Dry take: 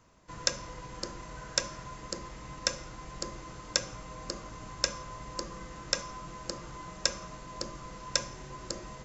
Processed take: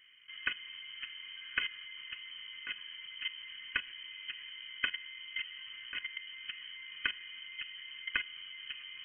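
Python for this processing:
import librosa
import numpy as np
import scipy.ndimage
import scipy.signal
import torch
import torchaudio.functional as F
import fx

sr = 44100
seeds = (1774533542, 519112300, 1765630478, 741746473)

y = fx.fixed_phaser(x, sr, hz=990.0, stages=4)
y = fx.level_steps(y, sr, step_db=14)
y = fx.freq_invert(y, sr, carrier_hz=3100)
y = y * 10.0 ** (8.0 / 20.0)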